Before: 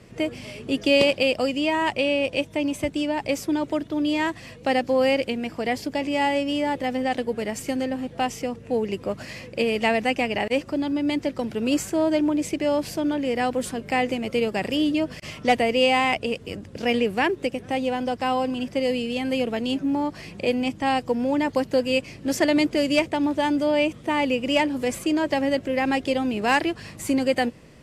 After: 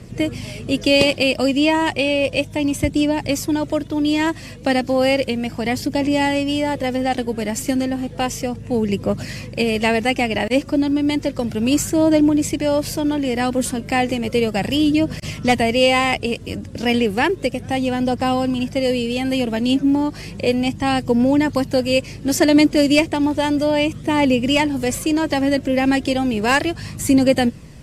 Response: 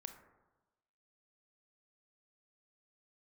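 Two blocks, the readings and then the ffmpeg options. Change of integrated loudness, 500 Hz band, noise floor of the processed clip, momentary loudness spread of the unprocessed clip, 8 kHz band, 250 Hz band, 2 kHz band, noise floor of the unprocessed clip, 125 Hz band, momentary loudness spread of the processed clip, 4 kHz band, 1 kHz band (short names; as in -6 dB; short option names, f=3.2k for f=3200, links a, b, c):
+5.0 dB, +3.5 dB, -35 dBFS, 7 LU, +9.0 dB, +6.5 dB, +4.0 dB, -44 dBFS, +11.0 dB, 8 LU, +5.5 dB, +3.0 dB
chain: -af "aphaser=in_gain=1:out_gain=1:delay=3.6:decay=0.28:speed=0.33:type=triangular,bass=f=250:g=8,treble=f=4k:g=6,volume=3dB"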